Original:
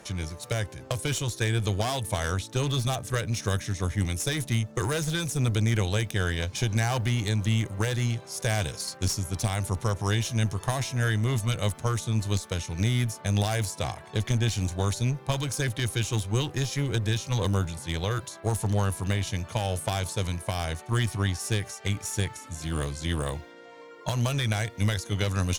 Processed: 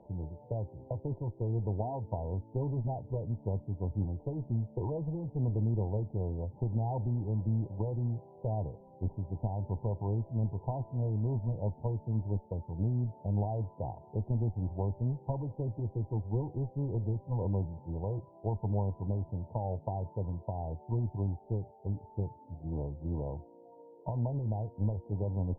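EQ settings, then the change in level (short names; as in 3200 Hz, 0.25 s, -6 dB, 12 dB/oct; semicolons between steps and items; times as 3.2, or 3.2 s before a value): brick-wall FIR low-pass 1000 Hz; air absorption 210 m; -5.5 dB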